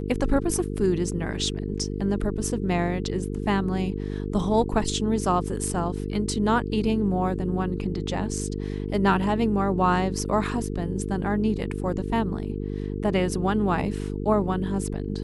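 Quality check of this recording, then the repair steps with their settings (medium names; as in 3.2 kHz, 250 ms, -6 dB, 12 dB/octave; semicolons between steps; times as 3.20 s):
buzz 50 Hz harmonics 9 -30 dBFS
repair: de-hum 50 Hz, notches 9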